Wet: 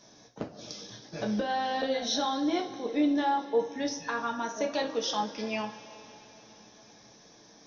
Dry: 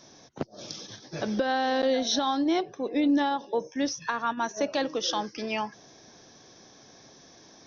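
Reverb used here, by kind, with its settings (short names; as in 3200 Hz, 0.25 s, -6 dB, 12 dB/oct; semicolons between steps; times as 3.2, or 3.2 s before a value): two-slope reverb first 0.29 s, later 4.1 s, from -20 dB, DRR 1 dB; gain -5 dB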